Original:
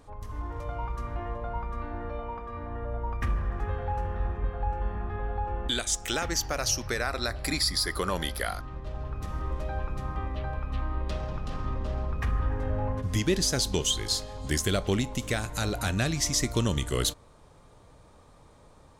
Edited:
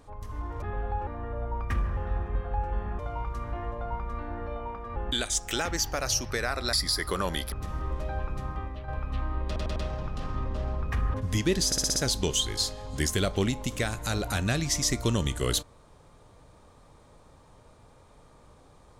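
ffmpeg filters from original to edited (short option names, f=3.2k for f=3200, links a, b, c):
-filter_complex "[0:a]asplit=18[a][b][c][d][e][f][g][h][i][j][k][l][m][n][o][p][q][r];[a]atrim=end=0.622[s];[b]atrim=start=5.078:end=5.532[t];[c]atrim=start=2.588:end=3.492[u];[d]atrim=start=4.058:end=5.082[v];[e]atrim=start=0.618:end=2.592[w];[f]atrim=start=5.528:end=7.302[x];[g]atrim=start=7.608:end=8.402[y];[h]atrim=start=9.118:end=10.48,asetpts=PTS-STARTPTS,afade=t=out:st=0.742:d=0.62:c=qsin:silence=0.375837[z];[i]atrim=start=10.48:end=11.162,asetpts=PTS-STARTPTS,afade=t=in:d=0.004:c=hsin:silence=0.375837[aa];[j]atrim=start=11.058:end=11.162[ab];[k]atrim=start=11.058:end=11.162[ac];[l]atrim=start=11.058:end=12.442[ad];[m]atrim=start=12.948:end=13.532[ae];[n]atrim=start=13.468:end=13.532[af];[o]atrim=start=13.468:end=13.532[ag];[p]atrim=start=13.468:end=13.532[ah];[q]atrim=start=13.468:end=13.532[ai];[r]atrim=start=13.468[aj];[s][t]acrossfade=d=0.004:c1=hsin:c2=hsin[ak];[ak][u]acrossfade=d=0.004:c1=hsin:c2=hsin[al];[al][v]acrossfade=d=0.004:c1=hsin:c2=hsin[am];[am][w]acrossfade=d=0.004:c1=hsin:c2=hsin[an];[an][x]acrossfade=d=0.004:c1=hsin:c2=hsin[ao];[ao][y]acrossfade=d=0.004:c1=hsin:c2=hsin[ap];[z][aa]concat=n=2:v=0:a=1[aq];[ap][aq]acrossfade=d=0.004:c1=hsin:c2=hsin[ar];[ar][ab]acrossfade=d=0.004:c1=hsin:c2=hsin[as];[as][ac]acrossfade=d=0.004:c1=hsin:c2=hsin[at];[at][ad]acrossfade=d=0.004:c1=hsin:c2=hsin[au];[au][ae]acrossfade=d=0.004:c1=hsin:c2=hsin[av];[av][af]acrossfade=d=0.004:c1=hsin:c2=hsin[aw];[aw][ag]acrossfade=d=0.004:c1=hsin:c2=hsin[ax];[ax][ah]acrossfade=d=0.004:c1=hsin:c2=hsin[ay];[ay][ai]acrossfade=d=0.004:c1=hsin:c2=hsin[az];[az][aj]acrossfade=d=0.004:c1=hsin:c2=hsin"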